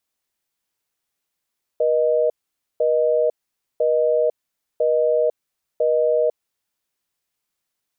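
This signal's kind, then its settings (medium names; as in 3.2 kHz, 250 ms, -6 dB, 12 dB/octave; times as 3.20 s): call progress tone busy tone, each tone -18 dBFS 4.58 s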